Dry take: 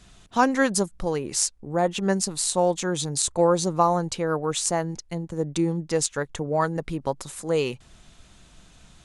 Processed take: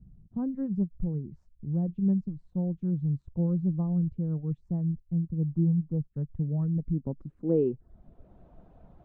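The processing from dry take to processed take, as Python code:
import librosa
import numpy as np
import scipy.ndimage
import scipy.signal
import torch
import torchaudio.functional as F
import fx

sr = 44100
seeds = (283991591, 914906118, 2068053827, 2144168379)

y = fx.high_shelf_res(x, sr, hz=1800.0, db=-14.0, q=1.5, at=(5.41, 6.11))
y = fx.dereverb_blind(y, sr, rt60_s=0.51)
y = fx.filter_sweep_lowpass(y, sr, from_hz=160.0, to_hz=660.0, start_s=6.69, end_s=8.45, q=1.9)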